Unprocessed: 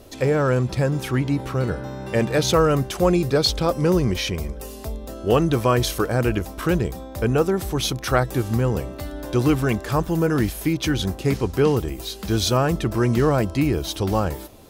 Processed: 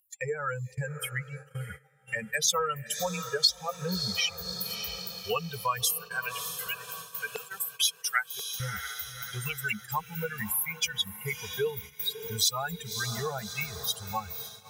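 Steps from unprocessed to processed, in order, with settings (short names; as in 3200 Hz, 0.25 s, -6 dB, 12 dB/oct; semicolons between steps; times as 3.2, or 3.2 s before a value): per-bin expansion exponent 3; HPF 100 Hz 12 dB/oct; tilt +3.5 dB/oct; 5.98–8.6 LFO high-pass saw down 2.9 Hz 410–4100 Hz; upward compressor, threshold -38 dBFS; elliptic band-stop 210–430 Hz; diffused feedback echo 0.6 s, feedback 52%, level -15 dB; compressor 2:1, threshold -38 dBFS, peak gain reduction 14.5 dB; gate -48 dBFS, range -17 dB; bell 590 Hz -9.5 dB 0.26 oct; gain +7 dB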